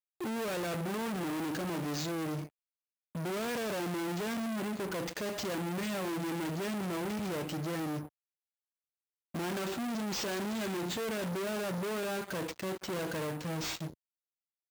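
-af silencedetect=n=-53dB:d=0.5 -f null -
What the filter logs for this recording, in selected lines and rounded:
silence_start: 2.49
silence_end: 3.15 | silence_duration: 0.66
silence_start: 8.08
silence_end: 9.34 | silence_duration: 1.26
silence_start: 13.94
silence_end: 14.70 | silence_duration: 0.76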